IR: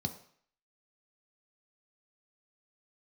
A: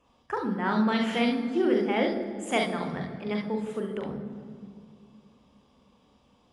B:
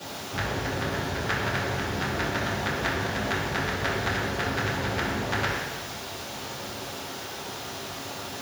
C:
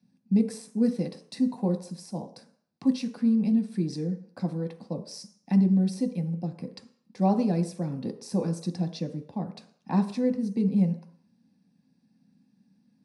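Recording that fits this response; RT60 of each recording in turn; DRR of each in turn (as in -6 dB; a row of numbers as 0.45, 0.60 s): C; 2.2, 1.1, 0.55 s; 2.5, -12.0, 5.0 dB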